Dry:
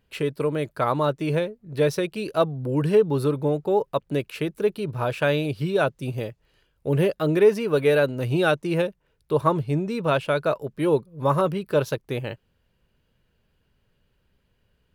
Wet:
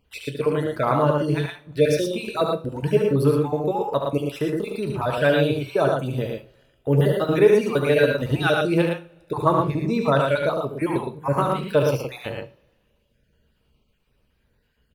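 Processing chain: random spectral dropouts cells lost 41%; loudspeakers at several distances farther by 25 m -6 dB, 39 m -4 dB; two-slope reverb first 0.33 s, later 1.9 s, from -26 dB, DRR 8 dB; gain +1.5 dB

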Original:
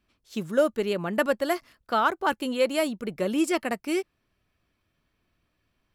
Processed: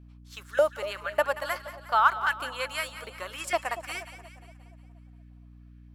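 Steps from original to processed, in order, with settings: LFO high-pass saw up 1.7 Hz 690–1800 Hz; split-band echo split 890 Hz, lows 0.236 s, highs 0.179 s, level -12.5 dB; hum 60 Hz, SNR 19 dB; gain -3 dB

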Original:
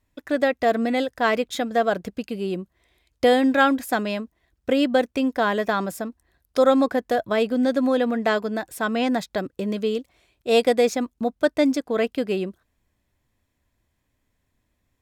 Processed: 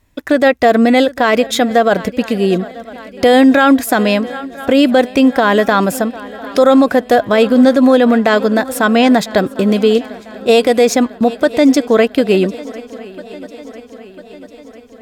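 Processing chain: swung echo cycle 0.998 s, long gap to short 3:1, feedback 57%, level -22.5 dB; maximiser +14.5 dB; gain -1 dB

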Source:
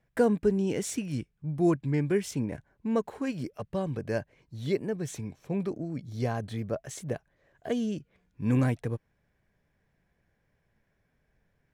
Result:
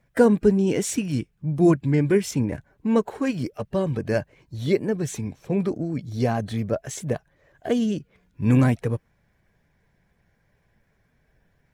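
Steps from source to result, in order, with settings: bin magnitudes rounded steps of 15 dB; gain +7.5 dB

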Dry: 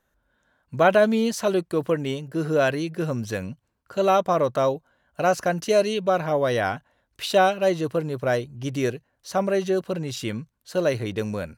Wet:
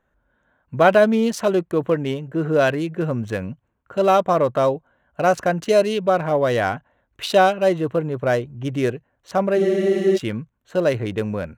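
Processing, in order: Wiener smoothing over 9 samples; spectral freeze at 9.6, 0.56 s; gain +3.5 dB

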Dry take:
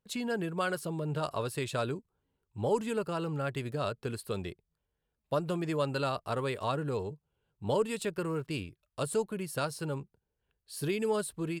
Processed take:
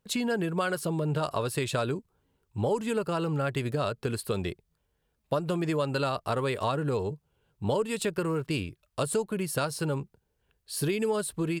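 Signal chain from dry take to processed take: compressor 3:1, threshold -34 dBFS, peak gain reduction 8.5 dB; gain +8 dB

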